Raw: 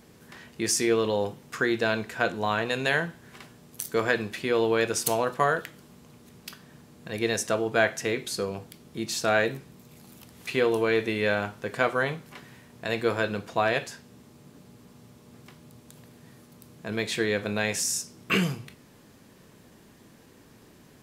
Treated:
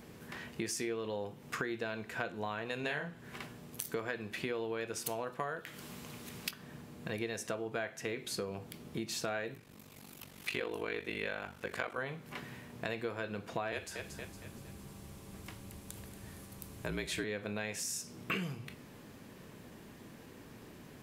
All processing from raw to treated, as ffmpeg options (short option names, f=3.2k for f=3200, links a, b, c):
-filter_complex "[0:a]asettb=1/sr,asplit=3[a][b][c];[a]atrim=end=2.804[d];[b]atrim=start=2.8:end=3.24,asetpts=PTS-STARTPTS,afade=t=in:d=0.004:c=qsin,afade=t=out:st=0.436:d=0.004:c=qsin,highshelf=f=11k:g=-5.5,asplit=2[e][f];[f]adelay=34,volume=-4dB[g];[e][g]amix=inputs=2:normalize=0,atrim=end_sample=19404[h];[c]atrim=start=3.236[i];[d][h]acrossfade=d=0.004:c1=hsin:c2=qsin[j];[j][i]acrossfade=d=0.004:c1=qsin:c2=hsin,asettb=1/sr,asplit=3[k][l][m];[k]atrim=end=5.664[n];[l]atrim=start=5.66:end=6.51,asetpts=PTS-STARTPTS,afade=t=in:d=0.004:c=qsin,afade=t=out:st=0.846:d=0.004:c=qsin,highpass=44,tiltshelf=f=1.2k:g=-4.5,acontrast=37[o];[m]atrim=start=6.506[p];[n][o]acrossfade=d=0.004:c1=hsin:c2=qsin[q];[q][p]acrossfade=d=0.004:c1=qsin:c2=hsin,asettb=1/sr,asplit=3[r][s][t];[r]atrim=end=9.544[u];[s]atrim=start=9.54:end=11.98,asetpts=PTS-STARTPTS,afade=t=in:d=0.004:c=qsin,afade=t=out:st=2.436:d=0.004:c=qsin,tiltshelf=f=910:g=-3.5,bandreject=f=50:t=h:w=6,bandreject=f=100:t=h:w=6,bandreject=f=150:t=h:w=6,bandreject=f=200:t=h:w=6,bandreject=f=250:t=h:w=6,aeval=exprs='val(0)*sin(2*PI*24*n/s)':c=same[v];[t]atrim=start=11.976[w];[u][v]acrossfade=d=0.004:c1=hsin:c2=qsin[x];[x][w]acrossfade=d=0.004:c1=qsin:c2=hsin,asettb=1/sr,asplit=3[y][z][aa];[y]atrim=end=13.724[ab];[z]atrim=start=13.72:end=17.24,asetpts=PTS-STARTPTS,afade=t=in:d=0.004:c=qsin,afade=t=out:st=3.516:d=0.004:c=qsin,equalizer=f=10k:w=0.6:g=7.5,afreqshift=-44,aecho=1:1:231|462|693|924:0.2|0.0858|0.0369|0.0159,atrim=end_sample=155232[ac];[aa]atrim=start=17.236[ad];[ab][ac]acrossfade=d=0.004:c1=hsin:c2=qsin[ae];[ae][ad]acrossfade=d=0.004:c1=qsin:c2=hsin,equalizer=f=6.5k:t=o:w=2.3:g=-4,acompressor=threshold=-37dB:ratio=6,equalizer=f=2.5k:t=o:w=0.77:g=2.5,volume=1.5dB"